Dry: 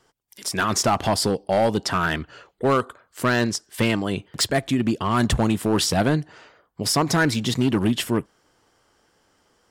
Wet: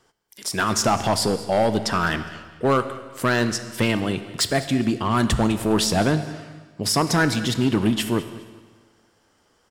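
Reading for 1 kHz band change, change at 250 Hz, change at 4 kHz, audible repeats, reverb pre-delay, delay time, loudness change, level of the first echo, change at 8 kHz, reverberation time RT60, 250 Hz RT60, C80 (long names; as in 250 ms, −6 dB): +0.5 dB, +0.5 dB, +0.5 dB, 2, 18 ms, 205 ms, +0.5 dB, −18.5 dB, +0.5 dB, 1.5 s, 1.5 s, 12.0 dB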